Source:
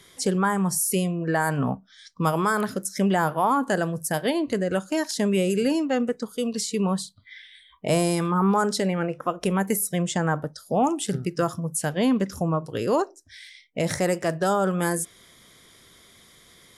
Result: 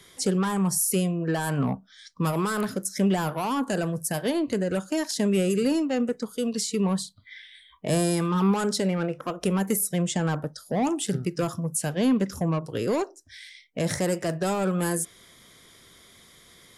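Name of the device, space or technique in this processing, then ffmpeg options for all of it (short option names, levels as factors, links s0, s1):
one-band saturation: -filter_complex "[0:a]acrossover=split=410|4100[s0][s1][s2];[s1]asoftclip=type=tanh:threshold=0.0447[s3];[s0][s3][s2]amix=inputs=3:normalize=0"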